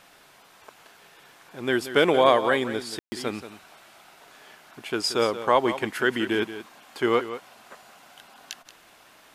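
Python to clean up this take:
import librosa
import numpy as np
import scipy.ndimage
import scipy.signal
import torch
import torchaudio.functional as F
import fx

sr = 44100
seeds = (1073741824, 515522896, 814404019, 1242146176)

y = fx.fix_ambience(x, sr, seeds[0], print_start_s=0.03, print_end_s=0.53, start_s=2.99, end_s=3.12)
y = fx.fix_echo_inverse(y, sr, delay_ms=179, level_db=-12.5)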